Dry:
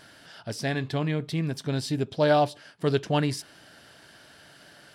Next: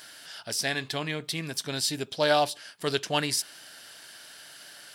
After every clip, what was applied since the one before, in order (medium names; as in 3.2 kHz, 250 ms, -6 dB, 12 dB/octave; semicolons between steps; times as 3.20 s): tilt EQ +3.5 dB/octave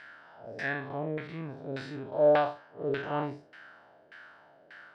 spectral blur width 128 ms; LFO low-pass saw down 1.7 Hz 490–2000 Hz; trim -1.5 dB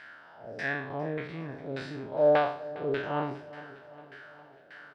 spectral sustain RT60 0.49 s; feedback delay 407 ms, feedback 59%, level -18 dB